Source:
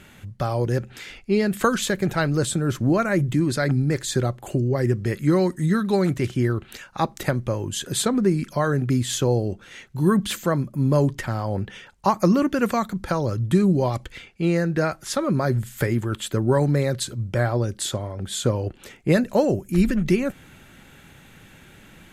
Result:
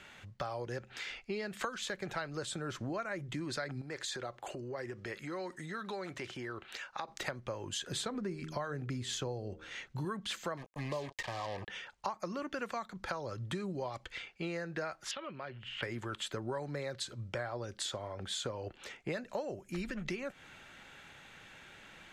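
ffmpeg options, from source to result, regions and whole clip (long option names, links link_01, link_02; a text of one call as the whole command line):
ffmpeg -i in.wav -filter_complex "[0:a]asettb=1/sr,asplit=3[link_01][link_02][link_03];[link_01]atrim=end=3.814[link_04];[link_02]atrim=start=3.81:end=7.08,asetpts=PTS-STARTPTS,afade=type=in:duration=0.004:curve=qsin,afade=type=out:start_time=3.266:duration=0.004:curve=qsin,bass=frequency=250:gain=-7,treble=frequency=4000:gain=-2,acompressor=threshold=-28dB:ratio=4:attack=3.2:release=140:knee=1:detection=peak[link_05];[link_03]atrim=start=7.076[link_06];[link_04][link_05]acrossfade=duration=0.004:curve1=hsin:curve2=qsin[link_07];[link_07][link_06]acrossfade=duration=0.004:curve1=qsin:curve2=hsin,asettb=1/sr,asplit=3[link_08][link_09][link_10];[link_08]atrim=end=7.884[link_11];[link_09]atrim=start=7.88:end=10.05,asetpts=PTS-STARTPTS,afade=type=in:duration=0.004:curve=qsin,afade=type=out:start_time=2.166:duration=0.004:curve=qsin,lowshelf=frequency=240:gain=8,bandreject=frequency=78.26:width_type=h:width=4,bandreject=frequency=156.52:width_type=h:width=4,bandreject=frequency=234.78:width_type=h:width=4,bandreject=frequency=313.04:width_type=h:width=4,bandreject=frequency=391.3:width_type=h:width=4,bandreject=frequency=469.56:width_type=h:width=4,bandreject=frequency=547.82:width_type=h:width=4[link_12];[link_10]atrim=start=10.046[link_13];[link_11][link_12]acrossfade=duration=0.004:curve1=hsin:curve2=qsin[link_14];[link_14][link_13]acrossfade=duration=0.004:curve1=qsin:curve2=hsin,asettb=1/sr,asplit=3[link_15][link_16][link_17];[link_15]atrim=end=10.574[link_18];[link_16]atrim=start=10.57:end=11.68,asetpts=PTS-STARTPTS,afade=type=in:duration=0.004:curve=qsin,afade=type=out:start_time=1.106:duration=0.004:curve=qsin,equalizer=frequency=210:width=1:gain=-5,acrusher=bits=4:mix=0:aa=0.5,asuperstop=centerf=1400:order=8:qfactor=4.6[link_19];[link_17]atrim=start=11.676[link_20];[link_18][link_19]acrossfade=duration=0.004:curve1=hsin:curve2=qsin[link_21];[link_21][link_20]acrossfade=duration=0.004:curve1=qsin:curve2=hsin,asettb=1/sr,asplit=3[link_22][link_23][link_24];[link_22]atrim=end=15.114[link_25];[link_23]atrim=start=15.11:end=15.83,asetpts=PTS-STARTPTS,afade=type=in:duration=0.004:curve=qsin,afade=type=out:start_time=0.716:duration=0.004:curve=qsin,lowpass=frequency=2900:width_type=q:width=13,acompressor=threshold=-35dB:ratio=4:attack=3.2:release=140:knee=1:detection=peak[link_26];[link_24]atrim=start=15.826[link_27];[link_25][link_26]acrossfade=duration=0.004:curve1=hsin:curve2=qsin[link_28];[link_28][link_27]acrossfade=duration=0.004:curve1=qsin:curve2=hsin,acrossover=split=490 7100:gain=0.251 1 0.141[link_29][link_30][link_31];[link_29][link_30][link_31]amix=inputs=3:normalize=0,acompressor=threshold=-33dB:ratio=6,volume=-2.5dB" out.wav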